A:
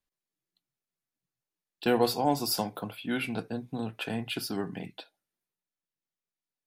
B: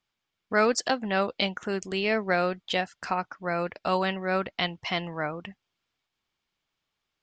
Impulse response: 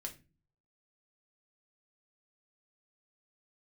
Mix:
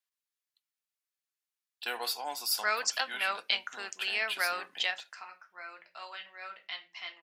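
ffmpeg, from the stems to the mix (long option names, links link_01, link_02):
-filter_complex "[0:a]volume=0dB,asplit=2[link_01][link_02];[1:a]adelay=2100,volume=-3dB,asplit=2[link_03][link_04];[link_04]volume=-5dB[link_05];[link_02]apad=whole_len=411110[link_06];[link_03][link_06]sidechaingate=range=-33dB:threshold=-55dB:ratio=16:detection=peak[link_07];[2:a]atrim=start_sample=2205[link_08];[link_05][link_08]afir=irnorm=-1:irlink=0[link_09];[link_01][link_07][link_09]amix=inputs=3:normalize=0,highpass=1300"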